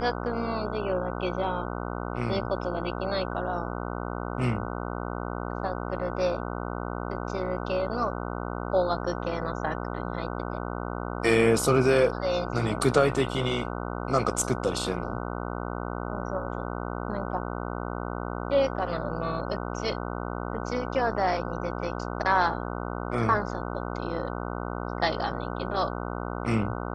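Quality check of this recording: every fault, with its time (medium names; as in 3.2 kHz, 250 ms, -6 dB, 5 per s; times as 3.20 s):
buzz 60 Hz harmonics 25 -33 dBFS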